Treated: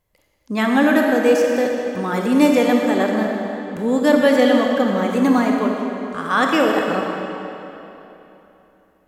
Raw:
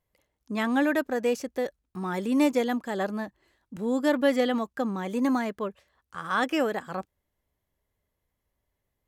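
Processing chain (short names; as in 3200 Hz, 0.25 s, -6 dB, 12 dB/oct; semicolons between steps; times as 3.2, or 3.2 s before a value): digital reverb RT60 3.2 s, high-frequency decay 0.85×, pre-delay 5 ms, DRR 0.5 dB; gain +7.5 dB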